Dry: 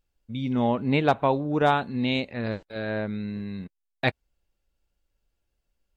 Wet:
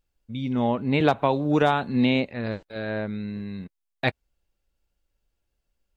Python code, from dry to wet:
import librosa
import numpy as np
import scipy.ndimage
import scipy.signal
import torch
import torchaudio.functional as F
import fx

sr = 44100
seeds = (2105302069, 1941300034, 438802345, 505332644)

y = fx.band_squash(x, sr, depth_pct=100, at=(1.0, 2.26))